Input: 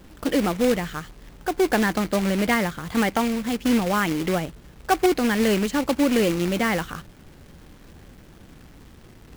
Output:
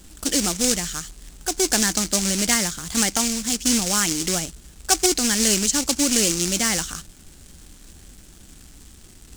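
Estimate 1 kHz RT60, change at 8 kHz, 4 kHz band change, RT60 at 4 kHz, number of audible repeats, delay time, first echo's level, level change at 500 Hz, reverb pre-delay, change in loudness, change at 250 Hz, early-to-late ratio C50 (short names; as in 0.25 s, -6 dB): none, +18.0 dB, +9.5 dB, none, none, none, none, -5.5 dB, none, +2.5 dB, -3.0 dB, none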